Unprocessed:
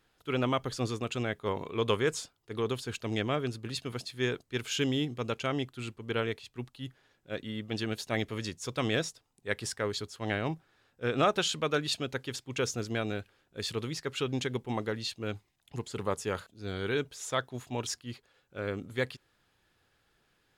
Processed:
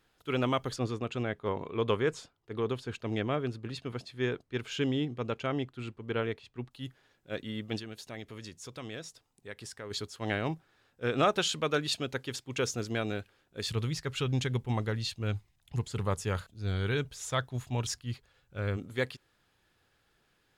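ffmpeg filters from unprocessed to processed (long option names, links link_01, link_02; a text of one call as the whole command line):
ffmpeg -i in.wav -filter_complex "[0:a]asettb=1/sr,asplit=3[link_01][link_02][link_03];[link_01]atrim=end=0.764[link_04];[link_02]atrim=start=0.76:end=6.71,asetpts=PTS-STARTPTS,afade=type=in:duration=0.004:curve=qsin,afade=type=out:start_time=5.946:duration=0.004:curve=qsin,lowpass=frequency=2200:poles=1[link_05];[link_03]atrim=start=6.706[link_06];[link_04][link_05]acrossfade=duration=0.004:curve1=hsin:curve2=qsin[link_07];[link_07][link_06]acrossfade=duration=0.004:curve1=qsin:curve2=hsin,asplit=3[link_08][link_09][link_10];[link_08]afade=type=out:start_time=7.78:duration=0.02[link_11];[link_09]acompressor=threshold=-47dB:ratio=2:attack=3.2:release=140:knee=1:detection=peak,afade=type=in:start_time=7.78:duration=0.02,afade=type=out:start_time=9.9:duration=0.02[link_12];[link_10]afade=type=in:start_time=9.9:duration=0.02[link_13];[link_11][link_12][link_13]amix=inputs=3:normalize=0,asplit=3[link_14][link_15][link_16];[link_14]afade=type=out:start_time=13.65:duration=0.02[link_17];[link_15]asubboost=boost=4:cutoff=140,afade=type=in:start_time=13.65:duration=0.02,afade=type=out:start_time=18.76:duration=0.02[link_18];[link_16]afade=type=in:start_time=18.76:duration=0.02[link_19];[link_17][link_18][link_19]amix=inputs=3:normalize=0" out.wav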